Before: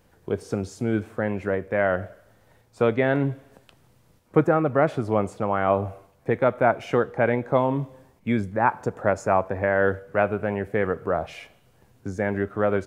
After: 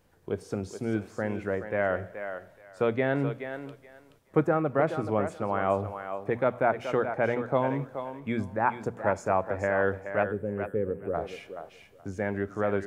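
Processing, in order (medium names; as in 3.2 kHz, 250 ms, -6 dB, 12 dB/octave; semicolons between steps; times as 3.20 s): hum notches 60/120/180/240 Hz; time-frequency box 10.24–11.14 s, 570–7500 Hz -18 dB; thinning echo 426 ms, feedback 19%, high-pass 340 Hz, level -8 dB; trim -5 dB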